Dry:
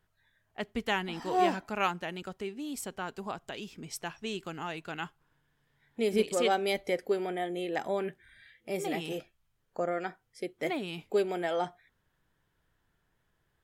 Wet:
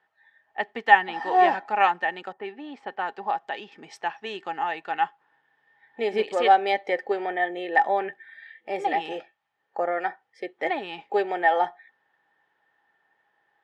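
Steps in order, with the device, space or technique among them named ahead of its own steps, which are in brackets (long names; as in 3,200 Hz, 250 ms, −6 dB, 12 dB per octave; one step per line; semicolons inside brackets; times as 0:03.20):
tin-can telephone (band-pass filter 410–3,100 Hz; hollow resonant body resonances 820/1,800 Hz, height 17 dB, ringing for 65 ms)
0:02.32–0:03.72: low-pass that shuts in the quiet parts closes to 1,200 Hz, open at −31 dBFS
level +5.5 dB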